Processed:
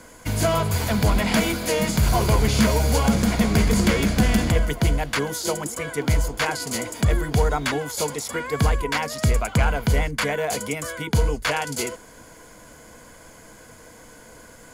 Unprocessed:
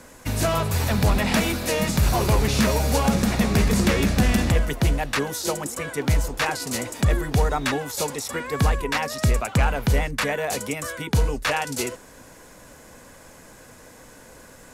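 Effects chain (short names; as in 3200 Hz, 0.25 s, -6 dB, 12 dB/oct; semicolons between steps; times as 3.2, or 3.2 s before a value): ripple EQ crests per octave 1.8, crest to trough 6 dB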